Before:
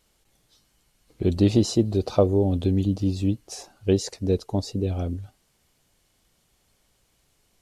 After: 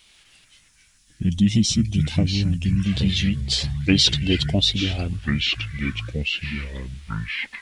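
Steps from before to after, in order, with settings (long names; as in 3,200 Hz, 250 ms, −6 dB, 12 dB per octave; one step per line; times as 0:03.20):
gain on a spectral selection 0:00.45–0:02.86, 330–6,400 Hz −13 dB
high-shelf EQ 2,200 Hz +9.5 dB
harmonic and percussive parts rebalanced harmonic −5 dB
graphic EQ with 10 bands 500 Hz −5 dB, 4,000 Hz +10 dB, 8,000 Hz −4 dB
formants moved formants −4 semitones
delay with pitch and tempo change per echo 90 ms, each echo −5 semitones, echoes 2, each echo −6 dB
level +5.5 dB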